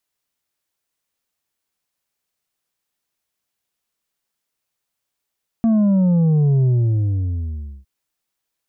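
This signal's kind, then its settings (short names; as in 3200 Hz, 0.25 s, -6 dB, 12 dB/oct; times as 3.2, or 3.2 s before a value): sub drop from 230 Hz, over 2.21 s, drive 5 dB, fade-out 1.21 s, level -13 dB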